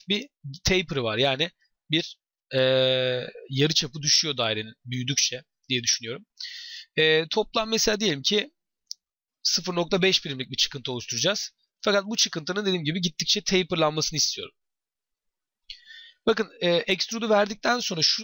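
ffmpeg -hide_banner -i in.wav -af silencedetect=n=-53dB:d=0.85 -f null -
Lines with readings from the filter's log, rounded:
silence_start: 14.50
silence_end: 15.69 | silence_duration: 1.19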